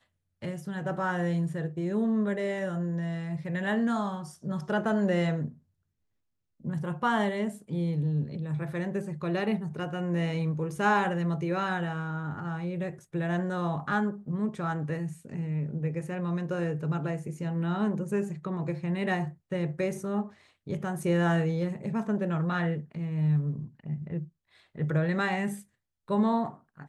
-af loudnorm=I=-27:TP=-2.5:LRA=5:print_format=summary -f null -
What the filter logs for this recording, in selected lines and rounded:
Input Integrated:    -30.4 LUFS
Input True Peak:     -13.7 dBTP
Input LRA:             2.4 LU
Input Threshold:     -40.7 LUFS